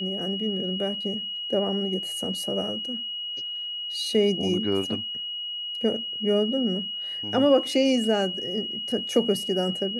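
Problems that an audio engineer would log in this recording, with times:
tone 2900 Hz -30 dBFS

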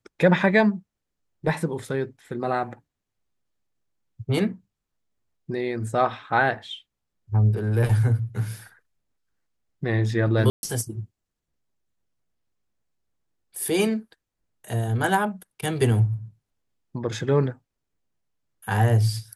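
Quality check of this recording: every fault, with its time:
10.5–10.63 gap 0.131 s

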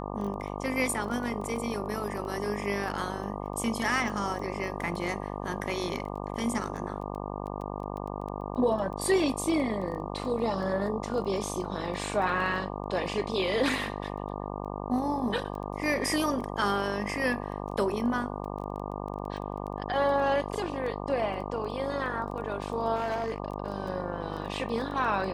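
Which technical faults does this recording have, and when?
buzz 50 Hz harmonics 24 -36 dBFS
crackle 10/s -36 dBFS
22.95–23.38 clipped -26 dBFS

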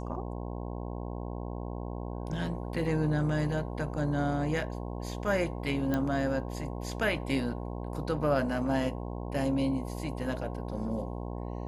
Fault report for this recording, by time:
buzz 60 Hz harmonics 18 -37 dBFS
5.94 pop -17 dBFS

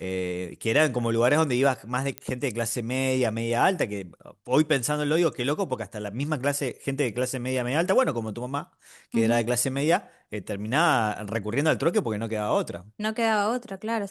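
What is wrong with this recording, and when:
2.18 pop -14 dBFS

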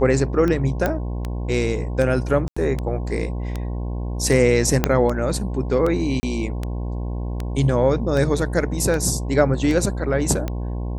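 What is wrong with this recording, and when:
buzz 60 Hz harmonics 18 -26 dBFS
tick 78 rpm -13 dBFS
0.86 pop -8 dBFS
2.48–2.56 gap 85 ms
4.84 pop -2 dBFS
6.2–6.23 gap 30 ms

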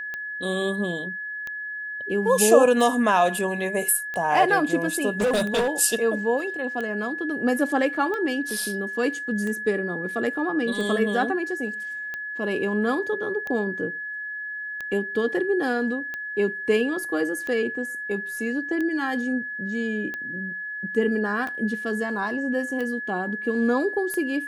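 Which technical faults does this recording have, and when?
tick 45 rpm -19 dBFS
tone 1700 Hz -30 dBFS
5.2–5.69 clipped -18.5 dBFS

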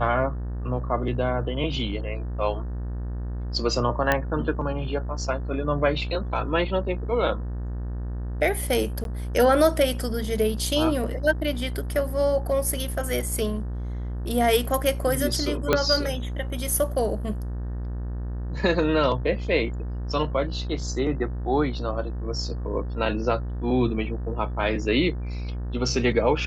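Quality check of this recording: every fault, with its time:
buzz 60 Hz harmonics 31 -30 dBFS
4.12 pop -7 dBFS
9.04–9.05 gap 12 ms
15.73 pop -6 dBFS

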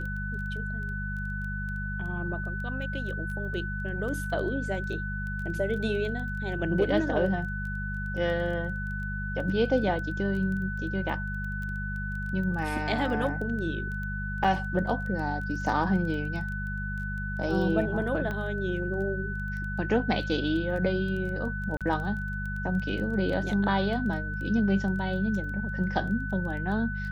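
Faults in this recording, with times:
crackle 12/s -35 dBFS
hum 50 Hz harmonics 4 -34 dBFS
tone 1500 Hz -35 dBFS
14.44 gap 4.8 ms
18.31 pop -21 dBFS
21.77–21.81 gap 37 ms

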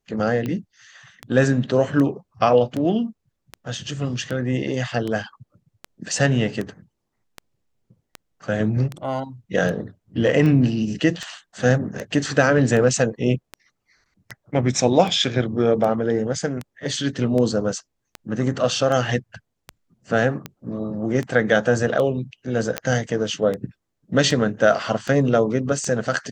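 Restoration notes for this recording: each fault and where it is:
tick 78 rpm -15 dBFS
22.78 pop -7 dBFS

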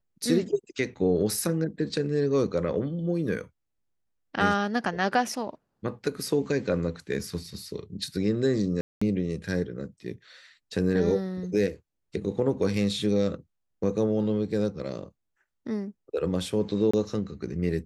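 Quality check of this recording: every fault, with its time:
8.81–9.02 gap 0.205 s
16.91–16.93 gap 25 ms

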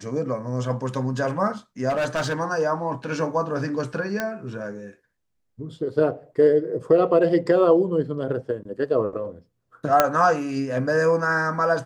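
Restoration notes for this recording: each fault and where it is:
1.89–2.34 clipped -20 dBFS
4.2 pop -11 dBFS
10 pop -2 dBFS

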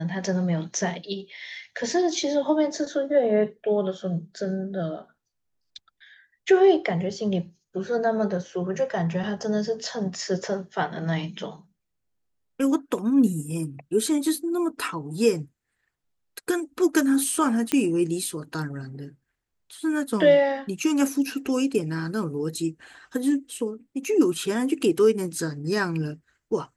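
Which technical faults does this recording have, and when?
17.72 pop -8 dBFS

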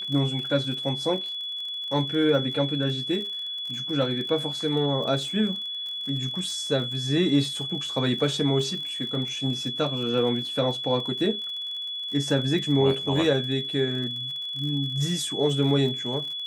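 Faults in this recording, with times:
crackle 44/s -34 dBFS
tone 3400 Hz -30 dBFS

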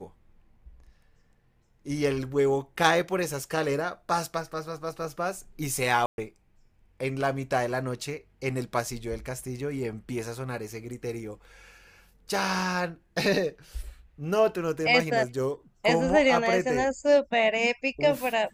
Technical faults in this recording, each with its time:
6.06–6.18 gap 0.121 s

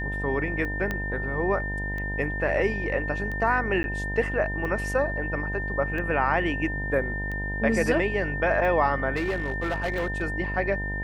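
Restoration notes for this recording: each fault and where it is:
buzz 50 Hz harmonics 20 -32 dBFS
tick 45 rpm -23 dBFS
tone 1800 Hz -31 dBFS
0.91 pop -15 dBFS
3.83–3.84 gap
9.15–10.23 clipped -23 dBFS

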